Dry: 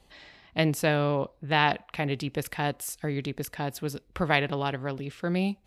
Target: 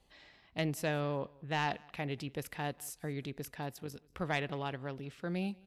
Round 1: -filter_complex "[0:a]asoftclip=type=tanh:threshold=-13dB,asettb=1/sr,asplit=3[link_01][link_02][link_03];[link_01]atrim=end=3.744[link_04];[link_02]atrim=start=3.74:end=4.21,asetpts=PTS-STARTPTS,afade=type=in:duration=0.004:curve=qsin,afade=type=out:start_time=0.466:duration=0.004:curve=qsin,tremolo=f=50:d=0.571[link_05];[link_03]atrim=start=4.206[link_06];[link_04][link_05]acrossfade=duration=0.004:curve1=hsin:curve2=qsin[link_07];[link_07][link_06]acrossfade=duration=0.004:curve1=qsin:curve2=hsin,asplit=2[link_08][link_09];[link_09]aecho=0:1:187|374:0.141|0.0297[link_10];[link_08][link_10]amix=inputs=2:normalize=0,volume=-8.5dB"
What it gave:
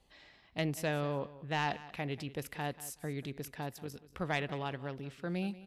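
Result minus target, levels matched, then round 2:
echo-to-direct +8.5 dB
-filter_complex "[0:a]asoftclip=type=tanh:threshold=-13dB,asettb=1/sr,asplit=3[link_01][link_02][link_03];[link_01]atrim=end=3.744[link_04];[link_02]atrim=start=3.74:end=4.21,asetpts=PTS-STARTPTS,afade=type=in:duration=0.004:curve=qsin,afade=type=out:start_time=0.466:duration=0.004:curve=qsin,tremolo=f=50:d=0.571[link_05];[link_03]atrim=start=4.206[link_06];[link_04][link_05]acrossfade=duration=0.004:curve1=hsin:curve2=qsin[link_07];[link_07][link_06]acrossfade=duration=0.004:curve1=qsin:curve2=hsin,asplit=2[link_08][link_09];[link_09]aecho=0:1:187|374:0.0531|0.0111[link_10];[link_08][link_10]amix=inputs=2:normalize=0,volume=-8.5dB"

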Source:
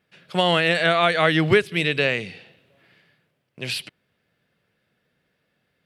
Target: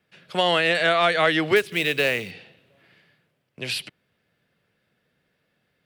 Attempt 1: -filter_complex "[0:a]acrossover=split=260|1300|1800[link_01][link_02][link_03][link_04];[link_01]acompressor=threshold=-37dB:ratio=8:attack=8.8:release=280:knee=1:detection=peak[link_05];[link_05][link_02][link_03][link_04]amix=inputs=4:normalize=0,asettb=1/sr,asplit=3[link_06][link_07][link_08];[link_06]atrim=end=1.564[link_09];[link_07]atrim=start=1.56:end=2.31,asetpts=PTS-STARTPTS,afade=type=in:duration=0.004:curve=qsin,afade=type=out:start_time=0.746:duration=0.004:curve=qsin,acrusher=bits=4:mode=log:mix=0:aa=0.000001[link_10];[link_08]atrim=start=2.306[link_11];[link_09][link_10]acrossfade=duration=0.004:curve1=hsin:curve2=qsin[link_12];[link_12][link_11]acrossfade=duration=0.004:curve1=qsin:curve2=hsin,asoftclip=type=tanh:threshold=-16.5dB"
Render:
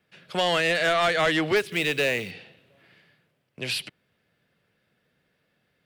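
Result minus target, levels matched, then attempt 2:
soft clipping: distortion +13 dB
-filter_complex "[0:a]acrossover=split=260|1300|1800[link_01][link_02][link_03][link_04];[link_01]acompressor=threshold=-37dB:ratio=8:attack=8.8:release=280:knee=1:detection=peak[link_05];[link_05][link_02][link_03][link_04]amix=inputs=4:normalize=0,asettb=1/sr,asplit=3[link_06][link_07][link_08];[link_06]atrim=end=1.564[link_09];[link_07]atrim=start=1.56:end=2.31,asetpts=PTS-STARTPTS,afade=type=in:duration=0.004:curve=qsin,afade=type=out:start_time=0.746:duration=0.004:curve=qsin,acrusher=bits=4:mode=log:mix=0:aa=0.000001[link_10];[link_08]atrim=start=2.306[link_11];[link_09][link_10]acrossfade=duration=0.004:curve1=hsin:curve2=qsin[link_12];[link_12][link_11]acrossfade=duration=0.004:curve1=qsin:curve2=hsin,asoftclip=type=tanh:threshold=-6.5dB"

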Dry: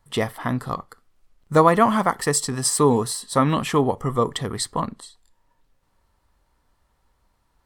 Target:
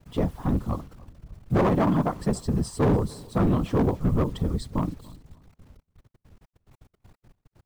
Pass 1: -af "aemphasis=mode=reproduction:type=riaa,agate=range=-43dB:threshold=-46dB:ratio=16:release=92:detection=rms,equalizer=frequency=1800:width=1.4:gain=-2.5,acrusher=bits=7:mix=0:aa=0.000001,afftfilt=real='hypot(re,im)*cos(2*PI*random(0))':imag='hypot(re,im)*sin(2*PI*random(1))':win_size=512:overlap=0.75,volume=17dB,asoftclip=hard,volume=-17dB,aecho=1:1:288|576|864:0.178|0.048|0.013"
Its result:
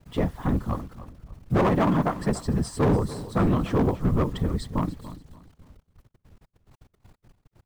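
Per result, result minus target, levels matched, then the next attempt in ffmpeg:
echo-to-direct +8 dB; 2,000 Hz band +3.0 dB
-af "aemphasis=mode=reproduction:type=riaa,agate=range=-43dB:threshold=-46dB:ratio=16:release=92:detection=rms,equalizer=frequency=1800:width=1.4:gain=-2.5,acrusher=bits=7:mix=0:aa=0.000001,afftfilt=real='hypot(re,im)*cos(2*PI*random(0))':imag='hypot(re,im)*sin(2*PI*random(1))':win_size=512:overlap=0.75,volume=17dB,asoftclip=hard,volume=-17dB,aecho=1:1:288|576:0.0708|0.0191"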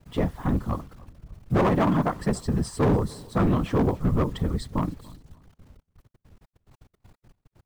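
2,000 Hz band +3.0 dB
-af "aemphasis=mode=reproduction:type=riaa,agate=range=-43dB:threshold=-46dB:ratio=16:release=92:detection=rms,equalizer=frequency=1800:width=1.4:gain=-10,acrusher=bits=7:mix=0:aa=0.000001,afftfilt=real='hypot(re,im)*cos(2*PI*random(0))':imag='hypot(re,im)*sin(2*PI*random(1))':win_size=512:overlap=0.75,volume=17dB,asoftclip=hard,volume=-17dB,aecho=1:1:288|576:0.0708|0.0191"

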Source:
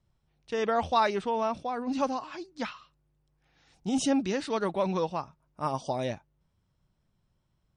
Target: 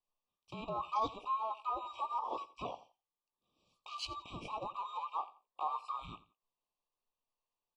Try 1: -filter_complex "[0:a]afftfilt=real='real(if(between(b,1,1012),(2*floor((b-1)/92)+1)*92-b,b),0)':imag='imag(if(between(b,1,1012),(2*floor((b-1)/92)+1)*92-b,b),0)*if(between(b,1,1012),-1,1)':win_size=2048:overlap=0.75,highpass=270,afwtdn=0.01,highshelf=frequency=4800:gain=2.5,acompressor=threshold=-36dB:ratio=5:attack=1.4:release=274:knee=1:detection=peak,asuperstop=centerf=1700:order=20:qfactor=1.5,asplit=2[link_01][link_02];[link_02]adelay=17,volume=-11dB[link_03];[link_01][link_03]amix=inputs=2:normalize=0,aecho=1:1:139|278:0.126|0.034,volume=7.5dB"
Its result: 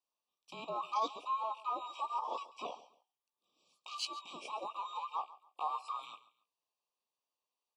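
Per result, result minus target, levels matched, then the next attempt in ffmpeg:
echo 53 ms late; 8,000 Hz band +6.5 dB; 250 Hz band −5.0 dB
-filter_complex "[0:a]afftfilt=real='real(if(between(b,1,1012),(2*floor((b-1)/92)+1)*92-b,b),0)':imag='imag(if(between(b,1,1012),(2*floor((b-1)/92)+1)*92-b,b),0)*if(between(b,1,1012),-1,1)':win_size=2048:overlap=0.75,highpass=270,afwtdn=0.01,highshelf=frequency=4800:gain=2.5,acompressor=threshold=-36dB:ratio=5:attack=1.4:release=274:knee=1:detection=peak,asuperstop=centerf=1700:order=20:qfactor=1.5,asplit=2[link_01][link_02];[link_02]adelay=17,volume=-11dB[link_03];[link_01][link_03]amix=inputs=2:normalize=0,aecho=1:1:86|172:0.126|0.034,volume=7.5dB"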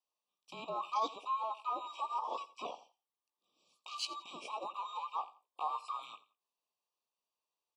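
8,000 Hz band +6.5 dB; 250 Hz band −5.0 dB
-filter_complex "[0:a]afftfilt=real='real(if(between(b,1,1012),(2*floor((b-1)/92)+1)*92-b,b),0)':imag='imag(if(between(b,1,1012),(2*floor((b-1)/92)+1)*92-b,b),0)*if(between(b,1,1012),-1,1)':win_size=2048:overlap=0.75,highpass=270,afwtdn=0.01,highshelf=frequency=4800:gain=-9,acompressor=threshold=-36dB:ratio=5:attack=1.4:release=274:knee=1:detection=peak,asuperstop=centerf=1700:order=20:qfactor=1.5,asplit=2[link_01][link_02];[link_02]adelay=17,volume=-11dB[link_03];[link_01][link_03]amix=inputs=2:normalize=0,aecho=1:1:86|172:0.126|0.034,volume=7.5dB"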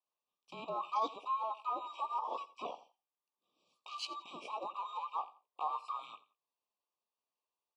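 250 Hz band −4.0 dB
-filter_complex "[0:a]afftfilt=real='real(if(between(b,1,1012),(2*floor((b-1)/92)+1)*92-b,b),0)':imag='imag(if(between(b,1,1012),(2*floor((b-1)/92)+1)*92-b,b),0)*if(between(b,1,1012),-1,1)':win_size=2048:overlap=0.75,afwtdn=0.01,highshelf=frequency=4800:gain=-9,acompressor=threshold=-36dB:ratio=5:attack=1.4:release=274:knee=1:detection=peak,asuperstop=centerf=1700:order=20:qfactor=1.5,asplit=2[link_01][link_02];[link_02]adelay=17,volume=-11dB[link_03];[link_01][link_03]amix=inputs=2:normalize=0,aecho=1:1:86|172:0.126|0.034,volume=7.5dB"

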